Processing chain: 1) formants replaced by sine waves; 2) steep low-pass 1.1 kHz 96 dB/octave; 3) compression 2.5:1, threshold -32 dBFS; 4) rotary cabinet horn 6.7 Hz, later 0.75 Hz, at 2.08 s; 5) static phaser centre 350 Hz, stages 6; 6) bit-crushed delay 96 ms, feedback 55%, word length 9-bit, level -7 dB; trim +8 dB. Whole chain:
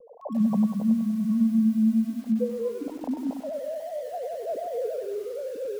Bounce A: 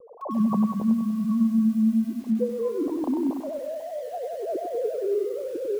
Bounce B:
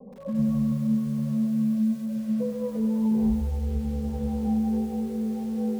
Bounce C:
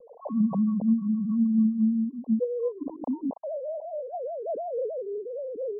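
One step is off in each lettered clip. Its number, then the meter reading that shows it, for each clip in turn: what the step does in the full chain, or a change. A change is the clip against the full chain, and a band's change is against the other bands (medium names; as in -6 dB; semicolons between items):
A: 5, loudness change +1.0 LU; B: 1, crest factor change -1.5 dB; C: 6, loudness change -1.0 LU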